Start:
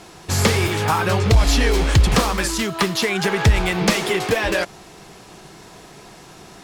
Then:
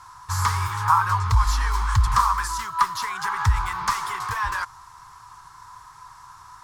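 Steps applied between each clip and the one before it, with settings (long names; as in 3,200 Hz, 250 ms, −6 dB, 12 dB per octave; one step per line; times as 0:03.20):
drawn EQ curve 110 Hz 0 dB, 190 Hz −22 dB, 640 Hz −24 dB, 1,000 Hz +14 dB, 2,600 Hz −12 dB, 5,400 Hz −3 dB
level −4.5 dB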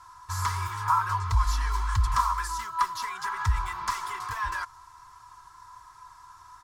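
comb filter 3 ms, depth 52%
level −7 dB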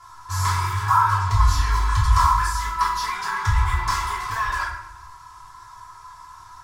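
convolution reverb RT60 0.75 s, pre-delay 3 ms, DRR −6.5 dB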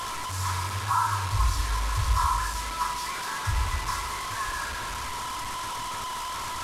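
linear delta modulator 64 kbit/s, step −19.5 dBFS
level −7.5 dB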